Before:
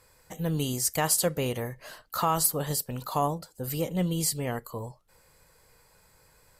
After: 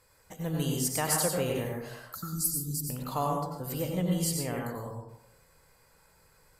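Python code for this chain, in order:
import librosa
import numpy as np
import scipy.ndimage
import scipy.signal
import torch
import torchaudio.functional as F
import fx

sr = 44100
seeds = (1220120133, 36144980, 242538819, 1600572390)

y = fx.cheby2_bandstop(x, sr, low_hz=550.0, high_hz=2900.0, order=4, stop_db=40, at=(2.15, 2.9))
y = fx.rev_plate(y, sr, seeds[0], rt60_s=0.79, hf_ratio=0.4, predelay_ms=80, drr_db=-0.5)
y = y * librosa.db_to_amplitude(-4.5)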